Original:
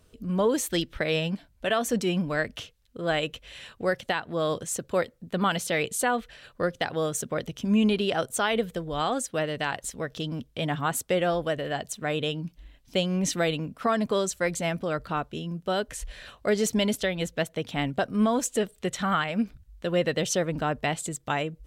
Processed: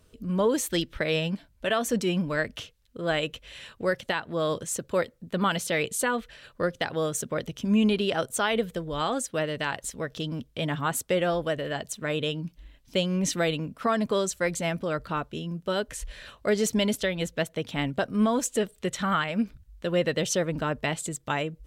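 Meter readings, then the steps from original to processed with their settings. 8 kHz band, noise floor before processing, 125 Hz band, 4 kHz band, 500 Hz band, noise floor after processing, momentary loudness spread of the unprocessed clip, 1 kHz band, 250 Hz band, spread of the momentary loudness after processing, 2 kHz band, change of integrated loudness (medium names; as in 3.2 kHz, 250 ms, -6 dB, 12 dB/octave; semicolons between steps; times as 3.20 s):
0.0 dB, -62 dBFS, 0.0 dB, 0.0 dB, 0.0 dB, -62 dBFS, 8 LU, -1.5 dB, 0.0 dB, 8 LU, 0.0 dB, 0.0 dB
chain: band-stop 740 Hz, Q 12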